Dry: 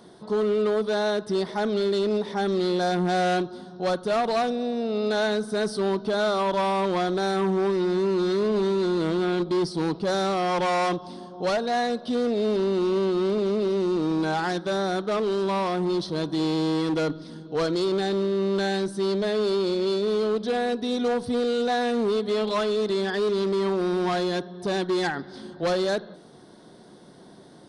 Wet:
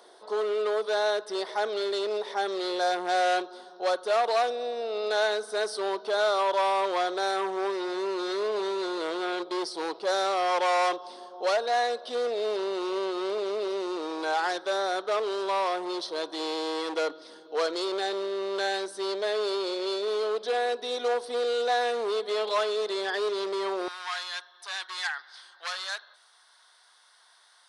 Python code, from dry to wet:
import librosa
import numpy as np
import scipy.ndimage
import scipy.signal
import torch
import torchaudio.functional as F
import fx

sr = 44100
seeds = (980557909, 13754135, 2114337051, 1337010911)

y = fx.highpass(x, sr, hz=fx.steps((0.0, 450.0), (23.88, 1100.0)), slope=24)